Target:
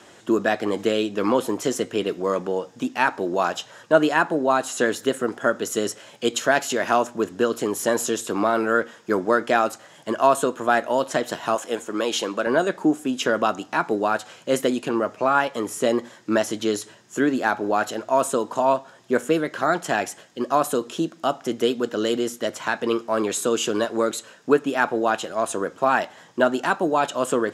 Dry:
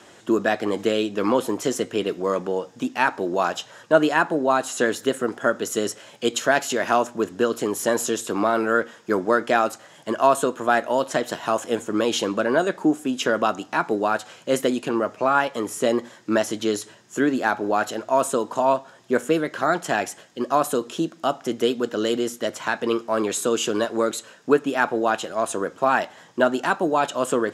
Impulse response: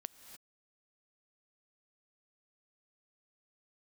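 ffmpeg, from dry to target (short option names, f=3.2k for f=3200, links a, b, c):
-filter_complex "[0:a]asettb=1/sr,asplit=3[a][b][c];[a]atrim=end=11.554[d];[b]atrim=start=11.55:end=12.47,asetpts=PTS-STARTPTS,afade=t=in:d=0.004:c=qsin,afade=t=out:st=0.916:d=0.004:c=qsin,highpass=f=390:p=1[e];[c]atrim=start=12.466[f];[d][e]acrossfade=d=0.004:c1=hsin:c2=qsin[g];[g][f]acrossfade=d=0.004:c1=qsin:c2=hsin"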